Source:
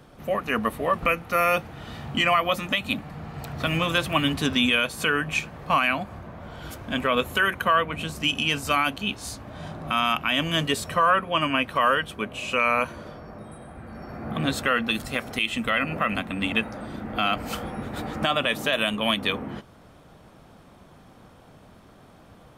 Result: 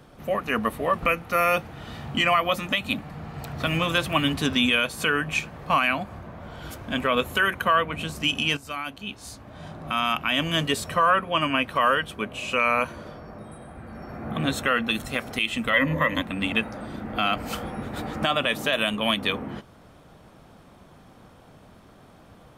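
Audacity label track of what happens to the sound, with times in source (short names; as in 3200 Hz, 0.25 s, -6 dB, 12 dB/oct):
8.570000	10.390000	fade in, from -12.5 dB
13.920000	15.100000	Butterworth band-stop 4800 Hz, Q 6.6
15.730000	16.220000	ripple EQ crests per octave 1.1, crest to trough 16 dB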